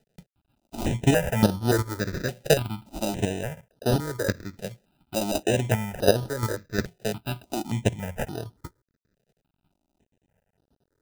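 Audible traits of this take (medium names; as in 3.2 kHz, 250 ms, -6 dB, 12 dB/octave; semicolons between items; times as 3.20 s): aliases and images of a low sample rate 1.1 kHz, jitter 0%; chopped level 2.8 Hz, depth 60%, duty 10%; a quantiser's noise floor 12-bit, dither none; notches that jump at a steady rate 3.5 Hz 290–7400 Hz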